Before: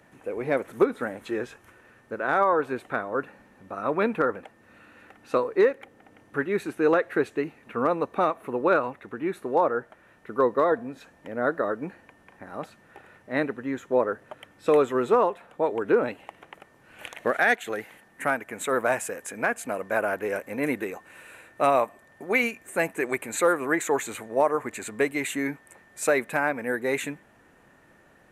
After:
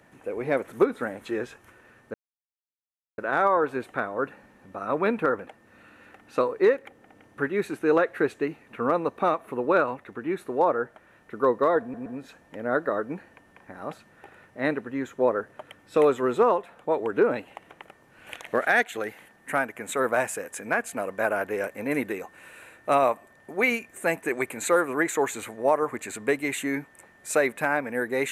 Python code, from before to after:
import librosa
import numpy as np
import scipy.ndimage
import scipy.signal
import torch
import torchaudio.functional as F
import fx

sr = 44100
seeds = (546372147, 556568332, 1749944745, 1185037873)

y = fx.edit(x, sr, fx.insert_silence(at_s=2.14, length_s=1.04),
    fx.stutter(start_s=10.78, slice_s=0.12, count=3), tone=tone)